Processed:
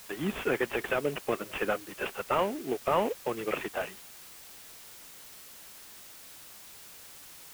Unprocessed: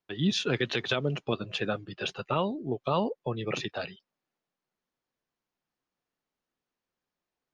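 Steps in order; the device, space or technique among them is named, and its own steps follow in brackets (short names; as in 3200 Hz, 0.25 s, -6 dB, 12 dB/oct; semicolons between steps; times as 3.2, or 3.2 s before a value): army field radio (BPF 320–3300 Hz; CVSD 16 kbps; white noise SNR 15 dB); gain +3 dB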